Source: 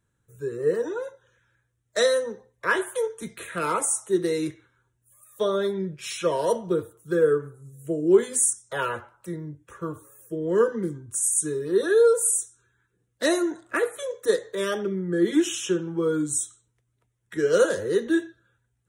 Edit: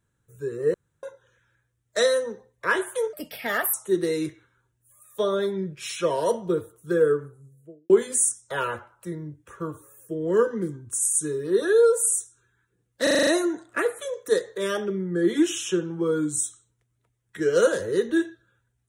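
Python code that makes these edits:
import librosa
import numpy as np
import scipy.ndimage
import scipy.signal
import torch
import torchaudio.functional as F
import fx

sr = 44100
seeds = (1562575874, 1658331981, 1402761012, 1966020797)

y = fx.studio_fade_out(x, sr, start_s=7.29, length_s=0.82)
y = fx.edit(y, sr, fx.room_tone_fill(start_s=0.74, length_s=0.29),
    fx.speed_span(start_s=3.13, length_s=0.82, speed=1.35),
    fx.stutter(start_s=13.24, slice_s=0.04, count=7), tone=tone)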